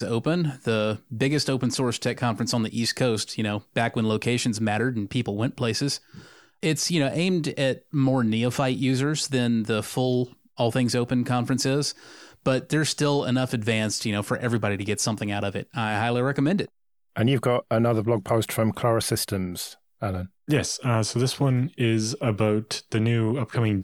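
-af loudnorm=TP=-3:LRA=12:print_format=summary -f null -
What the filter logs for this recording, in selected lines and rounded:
Input Integrated:    -24.9 LUFS
Input True Peak:      -8.9 dBTP
Input LRA:             1.6 LU
Input Threshold:     -35.0 LUFS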